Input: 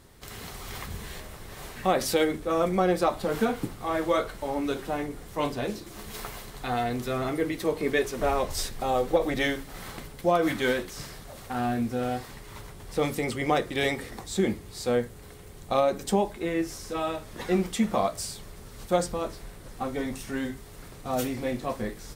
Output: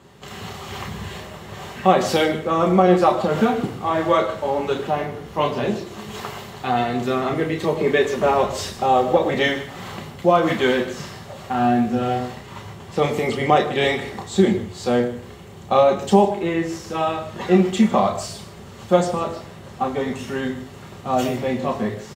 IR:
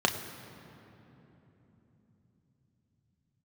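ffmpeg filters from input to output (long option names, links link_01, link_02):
-filter_complex "[0:a]asettb=1/sr,asplit=3[link_01][link_02][link_03];[link_01]atrim=end=4.874[link_04];[link_02]atrim=start=4.87:end=5.55,asetpts=PTS-STARTPTS,afade=type=in:duration=0.004:curve=qsin,afade=type=out:start_time=0.676:duration=0.004:curve=qsin,equalizer=frequency=7600:width=5.4:gain=-8[link_05];[link_03]atrim=start=5.546[link_06];[link_04][link_05]acrossfade=duration=0.004:curve1=hsin:curve2=qsin[link_07];[link_07][link_06]acrossfade=duration=0.004:curve1=qsin:curve2=hsin,aecho=1:1:153:0.158[link_08];[1:a]atrim=start_sample=2205,atrim=end_sample=6174[link_09];[link_08][link_09]afir=irnorm=-1:irlink=0,volume=-4dB"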